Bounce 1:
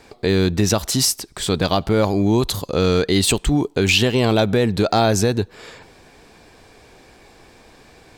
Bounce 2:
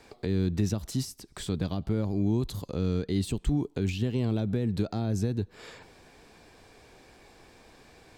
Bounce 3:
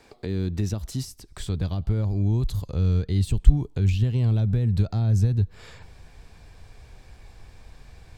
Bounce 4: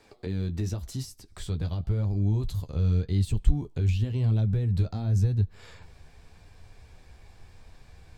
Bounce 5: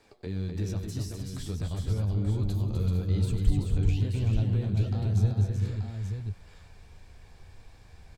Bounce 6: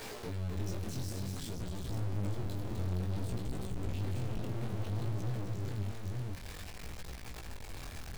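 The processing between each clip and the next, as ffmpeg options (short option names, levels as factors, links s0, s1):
-filter_complex "[0:a]acrossover=split=310[s0][s1];[s1]acompressor=threshold=0.0282:ratio=10[s2];[s0][s2]amix=inputs=2:normalize=0,volume=0.447"
-af "asubboost=boost=9:cutoff=100"
-af "flanger=delay=9.2:depth=3.9:regen=-34:speed=0.91:shape=triangular"
-af "aecho=1:1:94|251|382|454|881:0.126|0.531|0.531|0.266|0.447,volume=0.708"
-af "aeval=exprs='val(0)+0.5*0.0266*sgn(val(0))':c=same,aeval=exprs='(tanh(39.8*val(0)+0.75)-tanh(0.75))/39.8':c=same,flanger=delay=16:depth=7.7:speed=0.56"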